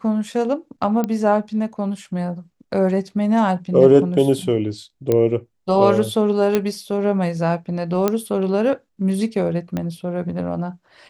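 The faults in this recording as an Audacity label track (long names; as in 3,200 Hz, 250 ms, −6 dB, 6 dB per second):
1.040000	1.040000	click −10 dBFS
5.120000	5.120000	click −7 dBFS
6.550000	6.550000	click −5 dBFS
8.080000	8.080000	click −5 dBFS
9.770000	9.770000	click −12 dBFS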